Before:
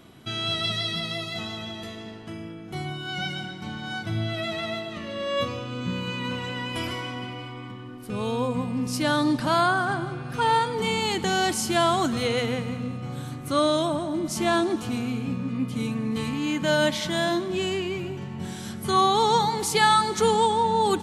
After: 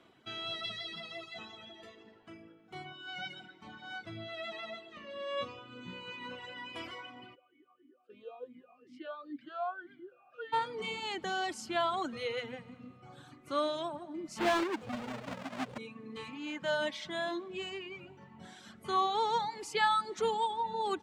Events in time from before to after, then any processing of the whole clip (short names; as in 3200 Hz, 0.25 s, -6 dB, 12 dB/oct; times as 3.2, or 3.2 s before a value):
7.34–10.52 vowel sweep a-i 3.9 Hz -> 1.4 Hz
14.38–15.78 half-waves squared off
whole clip: bell 7600 Hz +8.5 dB 0.96 oct; reverb removal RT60 1.7 s; three-band isolator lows -12 dB, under 300 Hz, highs -20 dB, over 3900 Hz; gain -8 dB